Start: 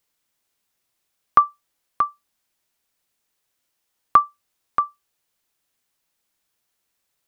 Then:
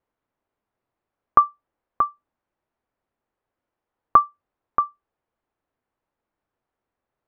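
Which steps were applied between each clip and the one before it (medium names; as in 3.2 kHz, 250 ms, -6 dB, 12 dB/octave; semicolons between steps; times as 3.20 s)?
low-pass 1.1 kHz 12 dB/octave; peaking EQ 170 Hz -5 dB 0.37 oct; trim +3.5 dB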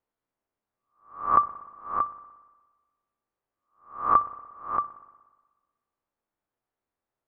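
reverse spectral sustain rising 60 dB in 0.45 s; hum notches 50/100/150 Hz; spring tank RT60 1.3 s, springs 59 ms, chirp 25 ms, DRR 15.5 dB; trim -7 dB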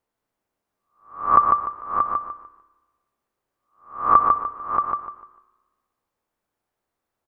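feedback delay 149 ms, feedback 30%, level -4 dB; trim +5 dB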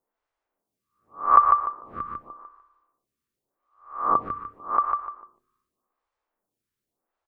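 lamp-driven phase shifter 0.86 Hz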